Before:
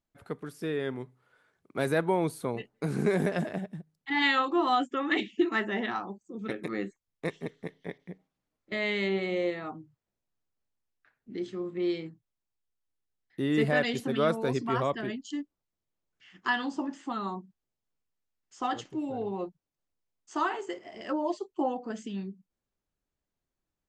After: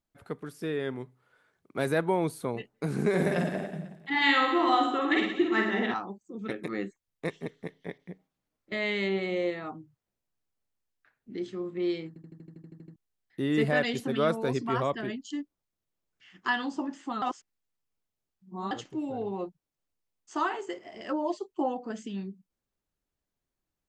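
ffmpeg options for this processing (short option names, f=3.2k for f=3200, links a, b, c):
-filter_complex "[0:a]asettb=1/sr,asplit=3[a][b][c];[a]atrim=end=3.094[d];[b]atrim=start=3.09:end=5.94,asetpts=PTS-STARTPTS,afade=t=in:d=0.004:c=qsin,afade=t=out:st=2.846:d=0.004:c=qsin,aecho=1:1:50|110|182|268.4|372.1|496.5:0.631|0.398|0.251|0.158|0.1|0.0631,atrim=end_sample=125685[e];[c]atrim=start=5.936[f];[d][e]acrossfade=d=0.004:c1=hsin:c2=qsin[g];[g][f]acrossfade=d=0.004:c1=qsin:c2=hsin,asplit=14[h][i][j][k][l][m][n][o][p][q][r][s][t][u];[h]atrim=end=12.162[v];[i]atrim=start=12.078:end=12.162[w];[j]atrim=start=12.078:end=12.162[x];[k]atrim=start=12.078:end=12.162[y];[l]atrim=start=12.078:end=12.162[z];[m]atrim=start=12.078:end=12.162[aa];[n]atrim=start=12.078:end=12.162[ab];[o]atrim=start=12.078:end=12.162[ac];[p]atrim=start=12.078:end=12.162[ad];[q]atrim=start=12.078:end=12.162[ae];[r]atrim=start=12.078:end=12.162[af];[s]atrim=start=12.958:end=17.222[ag];[t]atrim=start=17.218:end=18.712,asetpts=PTS-STARTPTS,areverse[ah];[u]atrim=start=18.708[ai];[v][w]acrossfade=d=0.004:c1=hsin:c2=hsin[aj];[aj][x]acrossfade=d=0.004:c1=hsin:c2=hsin[ak];[ak][y]acrossfade=d=0.004:c1=hsin:c2=hsin[al];[al][z]acrossfade=d=0.004:c1=hsin:c2=hsin[am];[am][aa]acrossfade=d=0.004:c1=hsin:c2=hsin[an];[an][ab]acrossfade=d=0.004:c1=hsin:c2=hsin[ao];[ao][ac]acrossfade=d=0.004:c1=hsin:c2=hsin[ap];[ap][ad]acrossfade=d=0.004:c1=hsin:c2=hsin[aq];[aq][ae]acrossfade=d=0.004:c1=hsin:c2=hsin[ar];[ar][af]acrossfade=d=0.004:c1=hsin:c2=hsin[as];[as][ag]acrossfade=d=0.004:c1=hsin:c2=hsin[at];[at][ah]acrossfade=d=0.004:c1=hsin:c2=hsin[au];[au][ai]acrossfade=d=0.004:c1=hsin:c2=hsin"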